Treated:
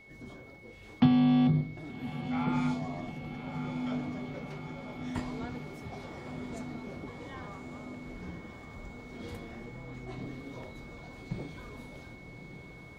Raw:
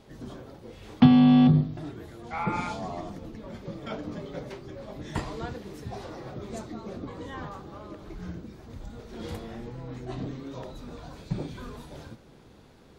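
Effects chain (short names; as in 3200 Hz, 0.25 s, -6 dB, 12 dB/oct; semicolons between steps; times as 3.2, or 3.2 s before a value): whine 2200 Hz -47 dBFS; diffused feedback echo 1.185 s, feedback 66%, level -8 dB; gain -6.5 dB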